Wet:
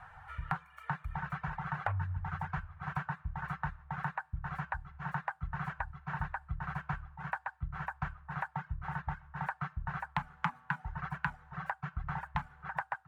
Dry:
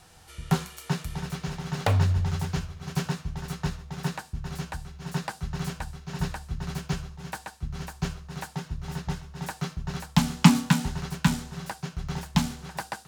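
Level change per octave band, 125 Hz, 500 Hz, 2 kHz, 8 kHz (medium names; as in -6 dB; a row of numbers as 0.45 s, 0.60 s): -11.5 dB, -14.0 dB, -2.0 dB, under -30 dB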